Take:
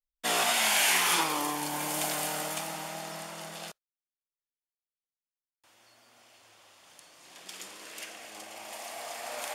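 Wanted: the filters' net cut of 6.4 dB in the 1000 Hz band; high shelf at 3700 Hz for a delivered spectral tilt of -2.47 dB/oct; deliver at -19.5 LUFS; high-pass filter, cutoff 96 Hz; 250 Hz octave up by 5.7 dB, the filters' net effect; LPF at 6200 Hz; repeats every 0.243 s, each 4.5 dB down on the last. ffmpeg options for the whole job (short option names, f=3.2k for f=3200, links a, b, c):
-af "highpass=96,lowpass=6.2k,equalizer=f=250:t=o:g=8.5,equalizer=f=1k:t=o:g=-9,highshelf=f=3.7k:g=-3.5,aecho=1:1:243|486|729|972|1215|1458|1701|1944|2187:0.596|0.357|0.214|0.129|0.0772|0.0463|0.0278|0.0167|0.01,volume=11dB"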